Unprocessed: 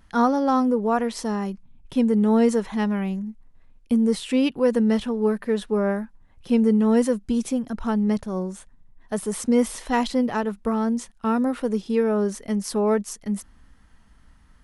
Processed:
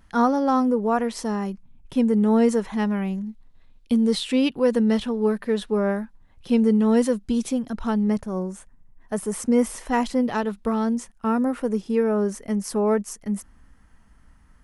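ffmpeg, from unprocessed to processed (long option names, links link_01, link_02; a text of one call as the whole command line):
ffmpeg -i in.wav -af "asetnsamples=nb_out_samples=441:pad=0,asendcmd='3.18 equalizer g 9.5;4.23 equalizer g 3;8.07 equalizer g -7;10.26 equalizer g 5;10.95 equalizer g -7',equalizer=frequency=3800:width_type=o:width=0.76:gain=-2" out.wav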